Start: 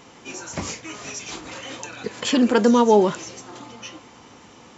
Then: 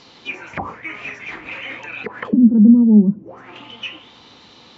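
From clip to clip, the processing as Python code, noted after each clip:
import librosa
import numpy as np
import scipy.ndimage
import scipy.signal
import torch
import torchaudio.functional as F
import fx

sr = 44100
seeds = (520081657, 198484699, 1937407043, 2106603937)

y = fx.envelope_lowpass(x, sr, base_hz=210.0, top_hz=4900.0, q=6.7, full_db=-19.5, direction='down')
y = y * librosa.db_to_amplitude(-1.5)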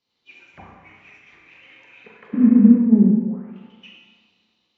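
y = fx.high_shelf(x, sr, hz=2300.0, db=-11.0)
y = fx.rev_schroeder(y, sr, rt60_s=2.1, comb_ms=32, drr_db=-1.0)
y = fx.band_widen(y, sr, depth_pct=70)
y = y * librosa.db_to_amplitude(-9.5)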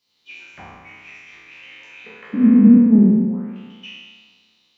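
y = fx.spec_trails(x, sr, decay_s=1.25)
y = fx.high_shelf(y, sr, hz=2500.0, db=10.5)
y = y * librosa.db_to_amplitude(-1.0)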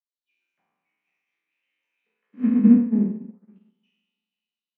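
y = scipy.signal.sosfilt(scipy.signal.butter(4, 160.0, 'highpass', fs=sr, output='sos'), x)
y = fx.echo_multitap(y, sr, ms=(481, 546), db=(-15.0, -20.0))
y = fx.upward_expand(y, sr, threshold_db=-30.0, expansion=2.5)
y = y * librosa.db_to_amplitude(-2.0)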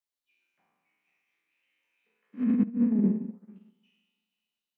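y = fx.over_compress(x, sr, threshold_db=-21.0, ratio=-0.5)
y = y * librosa.db_to_amplitude(-2.5)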